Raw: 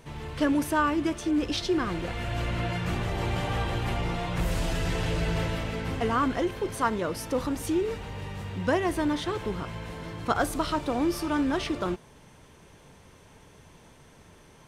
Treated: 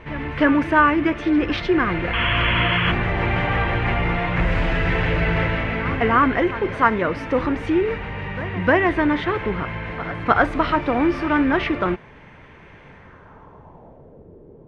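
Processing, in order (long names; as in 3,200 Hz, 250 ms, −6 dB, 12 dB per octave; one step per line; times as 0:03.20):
backwards echo 304 ms −16 dB
low-pass filter sweep 2,100 Hz → 440 Hz, 0:12.90–0:14.30
sound drawn into the spectrogram noise, 0:02.13–0:02.92, 920–3,400 Hz −30 dBFS
level +7 dB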